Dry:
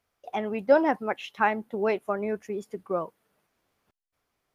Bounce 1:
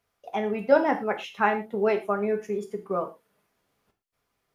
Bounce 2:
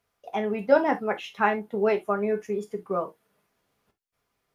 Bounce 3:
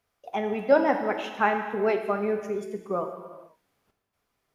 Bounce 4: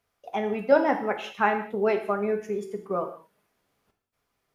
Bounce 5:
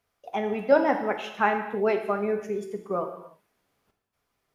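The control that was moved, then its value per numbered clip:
gated-style reverb, gate: 140 ms, 90 ms, 510 ms, 230 ms, 340 ms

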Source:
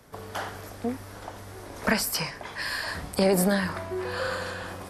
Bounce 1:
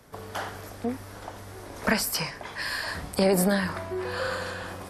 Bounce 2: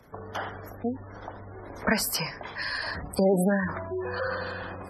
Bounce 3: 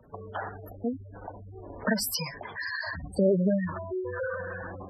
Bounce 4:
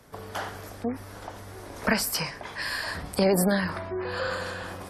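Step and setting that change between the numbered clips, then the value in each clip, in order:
spectral gate, under each frame's peak: -50 dB, -20 dB, -10 dB, -35 dB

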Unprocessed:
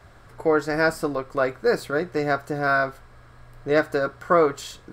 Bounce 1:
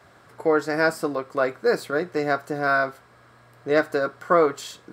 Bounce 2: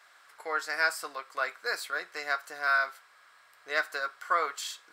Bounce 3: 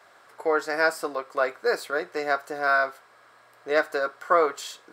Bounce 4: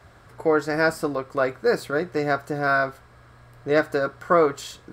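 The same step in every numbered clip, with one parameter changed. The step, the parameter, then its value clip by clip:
high-pass, cutoff frequency: 160 Hz, 1.4 kHz, 530 Hz, 53 Hz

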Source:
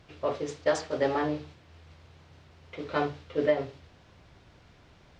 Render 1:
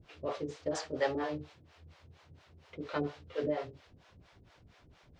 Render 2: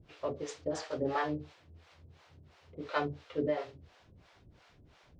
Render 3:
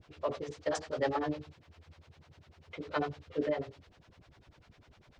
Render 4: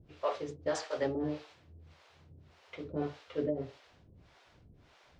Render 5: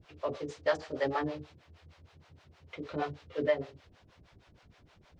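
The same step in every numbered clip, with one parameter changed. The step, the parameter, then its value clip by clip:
harmonic tremolo, rate: 4.3 Hz, 2.9 Hz, 10 Hz, 1.7 Hz, 6.4 Hz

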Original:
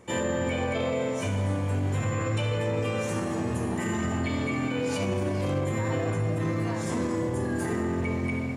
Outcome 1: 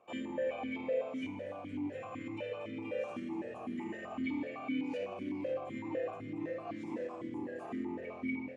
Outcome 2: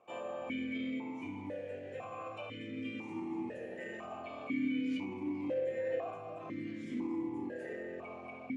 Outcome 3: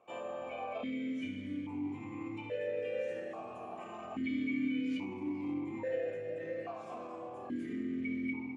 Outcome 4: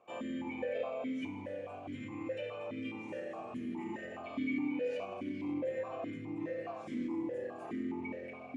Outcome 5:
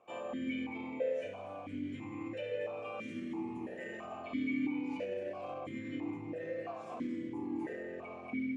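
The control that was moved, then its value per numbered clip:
stepped vowel filter, rate: 7.9 Hz, 2 Hz, 1.2 Hz, 4.8 Hz, 3 Hz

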